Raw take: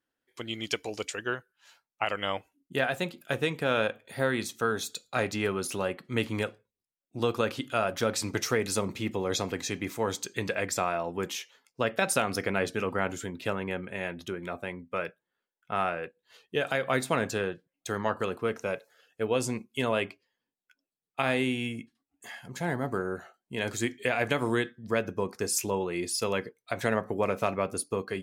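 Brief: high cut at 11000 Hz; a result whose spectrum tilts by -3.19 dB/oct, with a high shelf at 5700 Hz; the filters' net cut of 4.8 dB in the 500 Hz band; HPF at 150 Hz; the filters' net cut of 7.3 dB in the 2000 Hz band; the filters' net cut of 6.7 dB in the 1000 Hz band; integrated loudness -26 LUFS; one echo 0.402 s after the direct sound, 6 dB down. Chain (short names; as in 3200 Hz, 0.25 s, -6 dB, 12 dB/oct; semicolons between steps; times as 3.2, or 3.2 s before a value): HPF 150 Hz; LPF 11000 Hz; bell 500 Hz -4 dB; bell 1000 Hz -5.5 dB; bell 2000 Hz -8.5 dB; high shelf 5700 Hz +5.5 dB; echo 0.402 s -6 dB; gain +7.5 dB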